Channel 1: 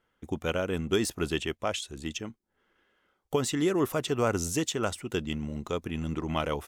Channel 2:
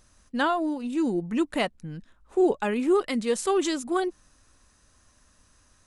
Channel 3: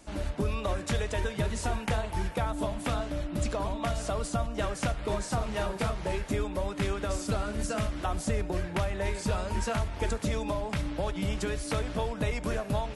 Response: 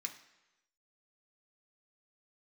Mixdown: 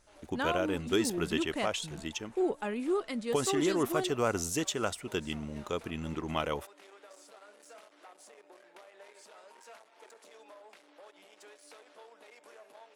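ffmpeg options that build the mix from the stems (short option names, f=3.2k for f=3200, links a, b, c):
-filter_complex "[0:a]lowshelf=f=240:g=-6,volume=-1.5dB[a];[1:a]volume=-8.5dB[b];[2:a]asoftclip=type=tanh:threshold=-31dB,highpass=f=390:w=0.5412,highpass=f=390:w=1.3066,volume=-15dB[c];[a][b][c]amix=inputs=3:normalize=0"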